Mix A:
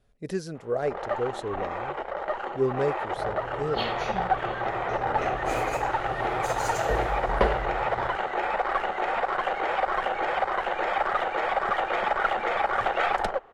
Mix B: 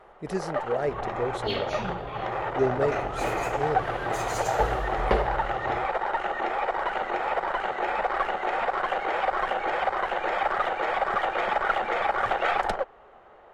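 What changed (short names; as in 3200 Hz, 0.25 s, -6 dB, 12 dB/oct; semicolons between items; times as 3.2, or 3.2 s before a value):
first sound: entry -0.55 s; second sound: entry -2.30 s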